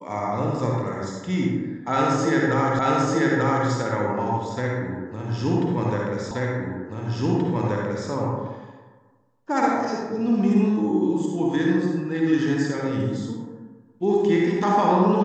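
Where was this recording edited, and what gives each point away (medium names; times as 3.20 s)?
2.79 s: repeat of the last 0.89 s
6.31 s: repeat of the last 1.78 s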